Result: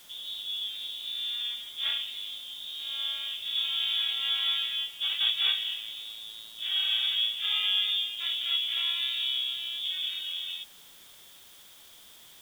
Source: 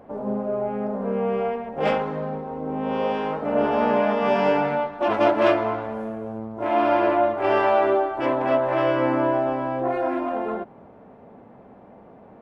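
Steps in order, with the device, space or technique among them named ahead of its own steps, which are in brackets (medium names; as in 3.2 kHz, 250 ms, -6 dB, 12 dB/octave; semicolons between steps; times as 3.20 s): scrambled radio voice (band-pass 380–2800 Hz; frequency inversion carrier 4 kHz; white noise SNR 22 dB); trim -7.5 dB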